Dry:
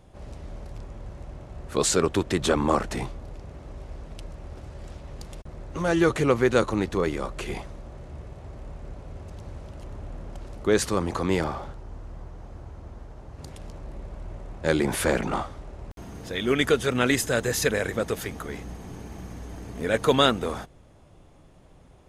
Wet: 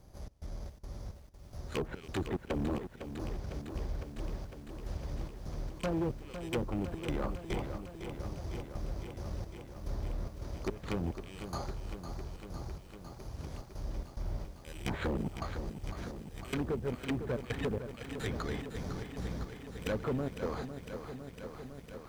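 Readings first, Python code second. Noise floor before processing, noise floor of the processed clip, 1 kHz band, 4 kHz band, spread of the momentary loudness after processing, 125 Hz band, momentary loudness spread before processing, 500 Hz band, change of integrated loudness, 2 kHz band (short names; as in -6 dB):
-53 dBFS, -52 dBFS, -13.5 dB, -16.0 dB, 11 LU, -5.5 dB, 20 LU, -13.0 dB, -14.5 dB, -15.0 dB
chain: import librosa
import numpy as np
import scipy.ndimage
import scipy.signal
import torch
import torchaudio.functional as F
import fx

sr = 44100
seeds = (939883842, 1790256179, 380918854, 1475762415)

y = fx.rattle_buzz(x, sr, strikes_db=-27.0, level_db=-11.0)
y = fx.vibrato(y, sr, rate_hz=5.3, depth_cents=39.0)
y = fx.low_shelf(y, sr, hz=170.0, db=4.5)
y = np.repeat(scipy.signal.resample_poly(y, 1, 8), 8)[:len(y)]
y = fx.rider(y, sr, range_db=3, speed_s=0.5)
y = fx.high_shelf(y, sr, hz=3500.0, db=7.5)
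y = fx.step_gate(y, sr, bpm=108, pattern='xx.xx.xx...x', floor_db=-24.0, edge_ms=4.5)
y = fx.env_lowpass_down(y, sr, base_hz=390.0, full_db=-18.0)
y = np.clip(y, -10.0 ** (-22.5 / 20.0), 10.0 ** (-22.5 / 20.0))
y = fx.notch(y, sr, hz=5200.0, q=27.0)
y = fx.quant_companded(y, sr, bits=8)
y = fx.echo_crushed(y, sr, ms=505, feedback_pct=80, bits=9, wet_db=-9)
y = y * 10.0 ** (-6.0 / 20.0)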